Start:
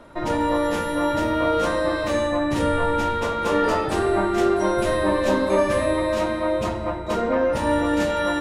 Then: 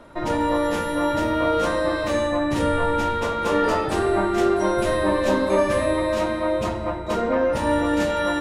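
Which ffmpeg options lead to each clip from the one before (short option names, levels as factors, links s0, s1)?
-af anull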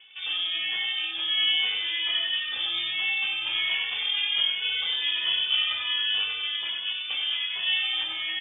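-filter_complex "[0:a]asplit=2[s0][s1];[s1]aecho=0:1:96|192|288|384|480|576|672:0.531|0.292|0.161|0.0883|0.0486|0.0267|0.0147[s2];[s0][s2]amix=inputs=2:normalize=0,lowpass=f=3100:t=q:w=0.5098,lowpass=f=3100:t=q:w=0.6013,lowpass=f=3100:t=q:w=0.9,lowpass=f=3100:t=q:w=2.563,afreqshift=-3600,asplit=2[s3][s4];[s4]adelay=2.3,afreqshift=1.3[s5];[s3][s5]amix=inputs=2:normalize=1,volume=0.631"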